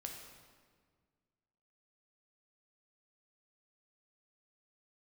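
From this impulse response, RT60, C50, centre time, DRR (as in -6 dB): 1.7 s, 3.5 dB, 52 ms, 1.0 dB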